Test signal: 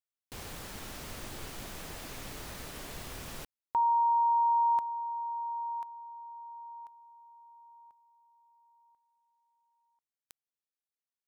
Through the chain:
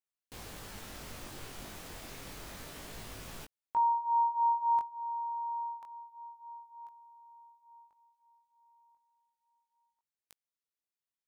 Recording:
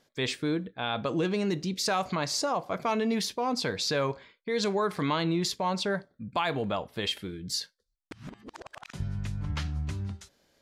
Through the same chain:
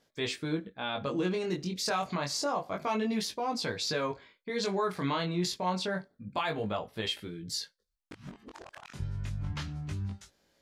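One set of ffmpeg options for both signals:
-af "flanger=delay=18:depth=4.6:speed=0.28"

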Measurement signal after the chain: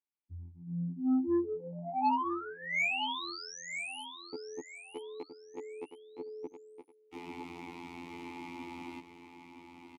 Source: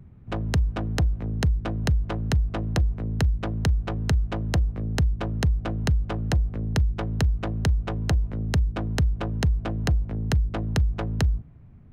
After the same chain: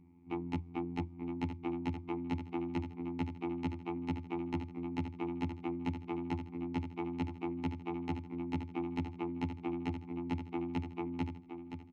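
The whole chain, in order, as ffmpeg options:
-filter_complex "[0:a]afftfilt=real='hypot(re,im)*cos(PI*b)':imag='0':win_size=2048:overlap=0.75,asplit=3[s0][s1][s2];[s0]bandpass=f=300:t=q:w=8,volume=1[s3];[s1]bandpass=f=870:t=q:w=8,volume=0.501[s4];[s2]bandpass=f=2240:t=q:w=8,volume=0.355[s5];[s3][s4][s5]amix=inputs=3:normalize=0,aeval=exprs='0.0376*(cos(1*acos(clip(val(0)/0.0376,-1,1)))-cos(1*PI/2))+0.00266*(cos(5*acos(clip(val(0)/0.0376,-1,1)))-cos(5*PI/2))':c=same,asplit=2[s6][s7];[s7]aecho=0:1:967|1934|2901:0.376|0.105|0.0295[s8];[s6][s8]amix=inputs=2:normalize=0,volume=2.37"

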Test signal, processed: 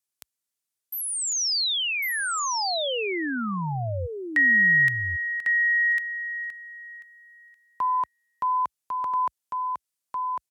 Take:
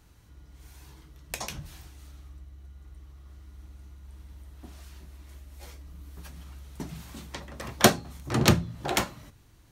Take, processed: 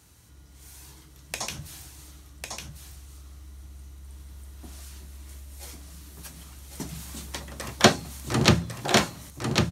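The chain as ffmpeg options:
-filter_complex "[0:a]highpass=f=60:w=0.5412,highpass=f=60:w=1.3066,equalizer=f=9500:t=o:w=1.9:g=10.5,acrossover=split=5200[s0][s1];[s1]acompressor=threshold=0.0224:ratio=4:attack=1:release=60[s2];[s0][s2]amix=inputs=2:normalize=0,aecho=1:1:1100:0.596,volume=1.12"

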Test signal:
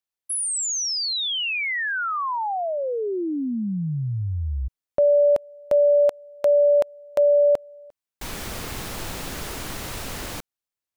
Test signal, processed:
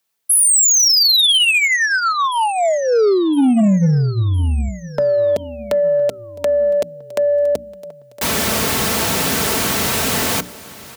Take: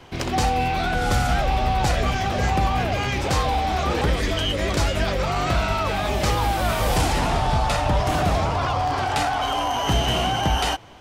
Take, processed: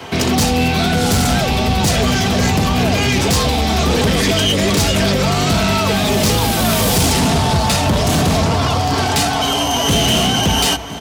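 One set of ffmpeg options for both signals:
-filter_complex "[0:a]acrossover=split=380|3100[s0][s1][s2];[s1]acompressor=threshold=0.0251:ratio=6:attack=0.3:release=77:knee=1:detection=peak[s3];[s0][s3][s2]amix=inputs=3:normalize=0,highpass=f=75:w=0.5412,highpass=f=75:w=1.3066,highshelf=f=11000:g=3.5,asoftclip=type=hard:threshold=0.126,bandreject=f=60:t=h:w=6,bandreject=f=120:t=h:w=6,bandreject=f=180:t=h:w=6,bandreject=f=240:t=h:w=6,bandreject=f=300:t=h:w=6,aecho=1:1:4.5:0.41,aecho=1:1:1011|2022|3033|4044:0.1|0.047|0.0221|0.0104,aeval=exprs='0.2*(cos(1*acos(clip(val(0)/0.2,-1,1)))-cos(1*PI/2))+0.1*(cos(5*acos(clip(val(0)/0.2,-1,1)))-cos(5*PI/2))+0.0141*(cos(7*acos(clip(val(0)/0.2,-1,1)))-cos(7*PI/2))':c=same,volume=1.88"

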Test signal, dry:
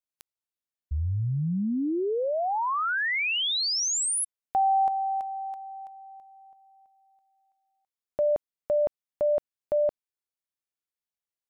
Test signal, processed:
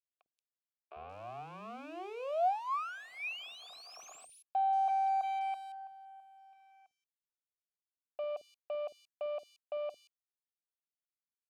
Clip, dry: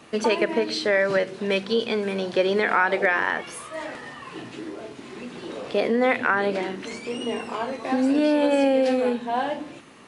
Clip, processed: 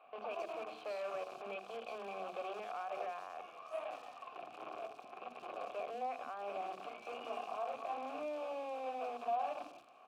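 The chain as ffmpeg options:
-filter_complex "[0:a]equalizer=f=460:w=0.61:g=3.5,acompressor=threshold=0.0501:ratio=8:attack=0.11:release=112:knee=6:detection=peak,acrusher=bits=6:dc=4:mix=0:aa=0.000001,asplit=3[s0][s1][s2];[s0]bandpass=f=730:t=q:w=8,volume=1[s3];[s1]bandpass=f=1090:t=q:w=8,volume=0.501[s4];[s2]bandpass=f=2440:t=q:w=8,volume=0.355[s5];[s3][s4][s5]amix=inputs=3:normalize=0,acrossover=split=350|3700[s6][s7][s8];[s6]adelay=50[s9];[s8]adelay=180[s10];[s9][s7][s10]amix=inputs=3:normalize=0,volume=1.19"

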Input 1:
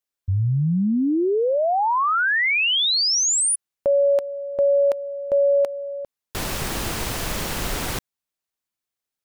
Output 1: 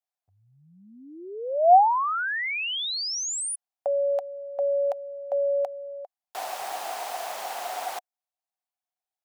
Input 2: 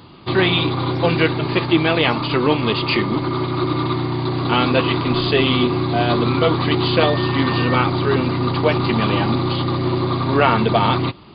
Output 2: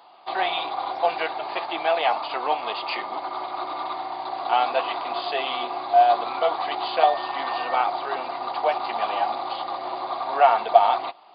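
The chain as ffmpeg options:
-af "highpass=f=730:t=q:w=8.2,volume=0.316"

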